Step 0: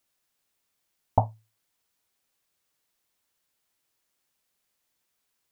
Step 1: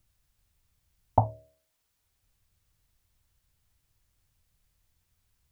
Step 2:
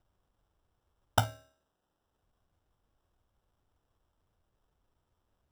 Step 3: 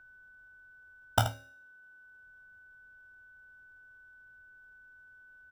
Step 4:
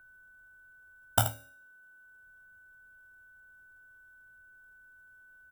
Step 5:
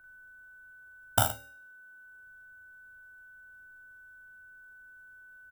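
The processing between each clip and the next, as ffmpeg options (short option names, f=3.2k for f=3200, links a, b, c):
-filter_complex "[0:a]acrossover=split=100[a][b];[a]acompressor=mode=upward:threshold=-49dB:ratio=2.5[c];[c][b]amix=inputs=2:normalize=0,bandreject=f=71.04:t=h:w=4,bandreject=f=142.08:t=h:w=4,bandreject=f=213.12:t=h:w=4,bandreject=f=284.16:t=h:w=4,bandreject=f=355.2:t=h:w=4,bandreject=f=426.24:t=h:w=4,bandreject=f=497.28:t=h:w=4,bandreject=f=568.32:t=h:w=4,bandreject=f=639.36:t=h:w=4"
-af "acrusher=samples=20:mix=1:aa=0.000001,bandreject=f=266.5:t=h:w=4,bandreject=f=533:t=h:w=4,bandreject=f=799.5:t=h:w=4,bandreject=f=1.066k:t=h:w=4,bandreject=f=1.3325k:t=h:w=4,bandreject=f=1.599k:t=h:w=4,bandreject=f=1.8655k:t=h:w=4,bandreject=f=2.132k:t=h:w=4,bandreject=f=2.3985k:t=h:w=4,bandreject=f=2.665k:t=h:w=4,bandreject=f=2.9315k:t=h:w=4,bandreject=f=3.198k:t=h:w=4,bandreject=f=3.4645k:t=h:w=4,bandreject=f=3.731k:t=h:w=4,bandreject=f=3.9975k:t=h:w=4,bandreject=f=4.264k:t=h:w=4,bandreject=f=4.5305k:t=h:w=4,bandreject=f=4.797k:t=h:w=4,bandreject=f=5.0635k:t=h:w=4,bandreject=f=5.33k:t=h:w=4,bandreject=f=5.5965k:t=h:w=4,bandreject=f=5.863k:t=h:w=4,bandreject=f=6.1295k:t=h:w=4,bandreject=f=6.396k:t=h:w=4,bandreject=f=6.6625k:t=h:w=4,bandreject=f=6.929k:t=h:w=4,bandreject=f=7.1955k:t=h:w=4,bandreject=f=7.462k:t=h:w=4,bandreject=f=7.7285k:t=h:w=4,bandreject=f=7.995k:t=h:w=4,bandreject=f=8.2615k:t=h:w=4,bandreject=f=8.528k:t=h:w=4,bandreject=f=8.7945k:t=h:w=4,bandreject=f=9.061k:t=h:w=4,volume=-4.5dB"
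-filter_complex "[0:a]asplit=2[a][b];[b]aecho=0:1:26|79:0.473|0.282[c];[a][c]amix=inputs=2:normalize=0,aeval=exprs='val(0)+0.002*sin(2*PI*1500*n/s)':c=same"
-af "aexciter=amount=2.2:drive=9.2:freq=7.4k,volume=-1dB"
-filter_complex "[0:a]asplit=2[a][b];[b]adelay=40,volume=-3.5dB[c];[a][c]amix=inputs=2:normalize=0"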